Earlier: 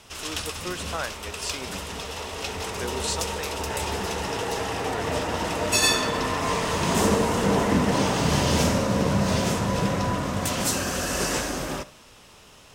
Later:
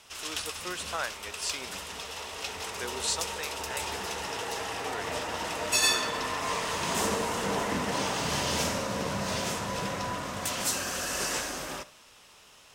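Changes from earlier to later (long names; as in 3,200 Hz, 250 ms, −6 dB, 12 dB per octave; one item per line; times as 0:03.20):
background −3.0 dB
master: add low-shelf EQ 480 Hz −10.5 dB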